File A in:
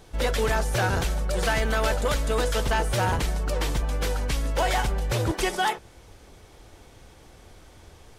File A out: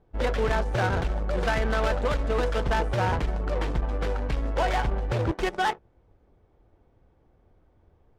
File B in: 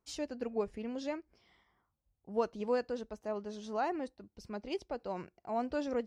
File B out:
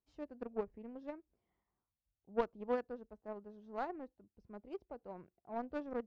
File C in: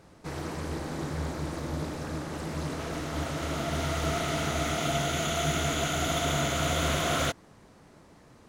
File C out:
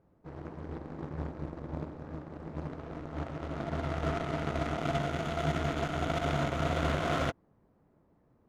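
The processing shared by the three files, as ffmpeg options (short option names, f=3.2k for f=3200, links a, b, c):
-af "aeval=exprs='0.168*(cos(1*acos(clip(val(0)/0.168,-1,1)))-cos(1*PI/2))+0.0168*(cos(7*acos(clip(val(0)/0.168,-1,1)))-cos(7*PI/2))':c=same,aemphasis=mode=production:type=cd,adynamicsmooth=sensitivity=1:basefreq=1.1k"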